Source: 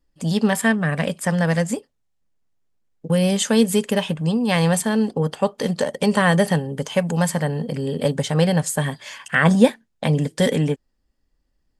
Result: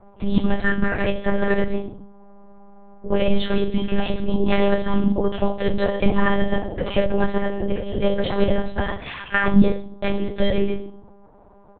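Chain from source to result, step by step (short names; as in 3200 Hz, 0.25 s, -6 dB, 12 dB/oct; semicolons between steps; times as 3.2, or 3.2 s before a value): compressor 10:1, threshold -20 dBFS, peak gain reduction 13.5 dB; comb 3.8 ms, depth 92%; de-hum 90.97 Hz, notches 2; flange 2 Hz, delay 3 ms, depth 8.4 ms, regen +78%; dynamic EQ 270 Hz, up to -6 dB, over -44 dBFS, Q 5.7; reverb RT60 0.55 s, pre-delay 5 ms, DRR -5.5 dB; band noise 140–930 Hz -52 dBFS; monotone LPC vocoder at 8 kHz 200 Hz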